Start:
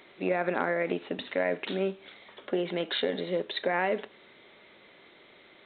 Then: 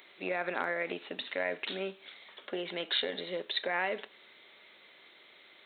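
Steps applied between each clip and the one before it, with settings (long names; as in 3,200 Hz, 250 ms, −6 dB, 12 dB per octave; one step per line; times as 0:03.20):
spectral tilt +3 dB per octave
level −4 dB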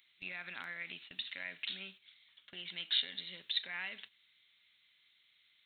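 noise gate −45 dBFS, range −9 dB
drawn EQ curve 100 Hz 0 dB, 470 Hz −29 dB, 3,000 Hz −2 dB
level +1.5 dB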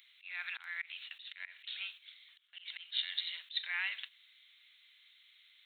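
Bessel high-pass filter 1,400 Hz, order 6
volume swells 203 ms
level +7 dB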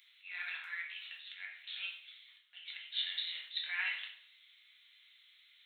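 rectangular room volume 120 cubic metres, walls mixed, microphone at 1 metre
level −3.5 dB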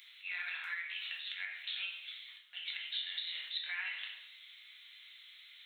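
downward compressor 6 to 1, threshold −45 dBFS, peak gain reduction 13 dB
level +8 dB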